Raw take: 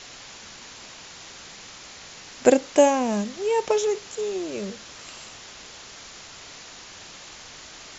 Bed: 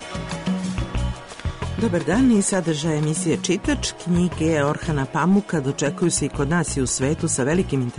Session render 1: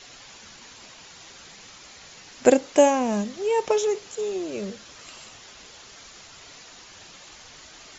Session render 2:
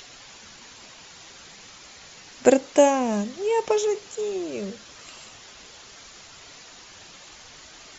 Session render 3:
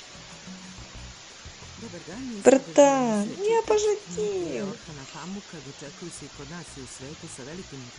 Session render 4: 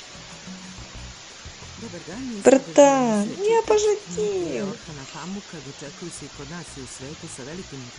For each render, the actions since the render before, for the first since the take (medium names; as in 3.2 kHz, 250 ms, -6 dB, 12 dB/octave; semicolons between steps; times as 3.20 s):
noise reduction 6 dB, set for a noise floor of -44 dBFS
upward compressor, threshold -44 dBFS
add bed -20 dB
trim +3.5 dB; peak limiter -2 dBFS, peak gain reduction 3 dB